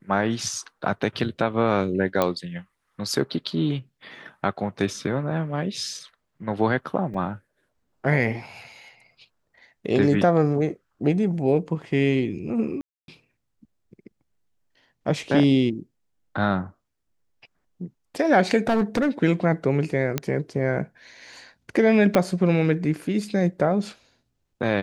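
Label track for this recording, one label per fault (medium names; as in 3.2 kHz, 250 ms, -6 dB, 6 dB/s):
2.220000	2.220000	pop -8 dBFS
7.140000	7.140000	dropout 4 ms
12.810000	13.080000	dropout 272 ms
18.670000	19.090000	clipped -16.5 dBFS
20.180000	20.180000	pop -9 dBFS
22.150000	22.150000	pop -7 dBFS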